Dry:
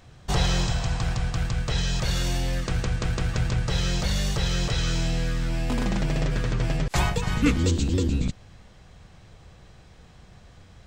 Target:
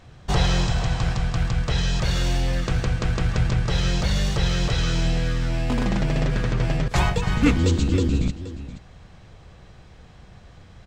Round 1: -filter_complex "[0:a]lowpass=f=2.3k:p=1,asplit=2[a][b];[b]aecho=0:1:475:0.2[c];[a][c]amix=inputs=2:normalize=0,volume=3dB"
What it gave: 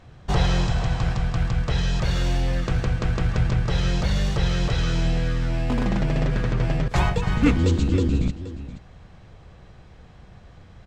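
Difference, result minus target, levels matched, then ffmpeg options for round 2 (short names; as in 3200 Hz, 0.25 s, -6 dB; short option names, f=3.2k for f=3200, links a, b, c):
4000 Hz band -3.0 dB
-filter_complex "[0:a]lowpass=f=4.8k:p=1,asplit=2[a][b];[b]aecho=0:1:475:0.2[c];[a][c]amix=inputs=2:normalize=0,volume=3dB"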